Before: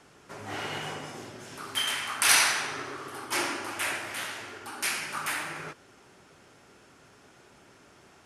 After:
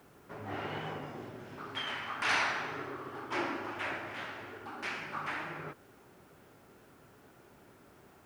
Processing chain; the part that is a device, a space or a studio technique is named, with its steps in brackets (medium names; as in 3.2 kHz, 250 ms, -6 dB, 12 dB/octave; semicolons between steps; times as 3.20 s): cassette deck with a dirty head (tape spacing loss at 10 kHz 32 dB; wow and flutter; white noise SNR 31 dB)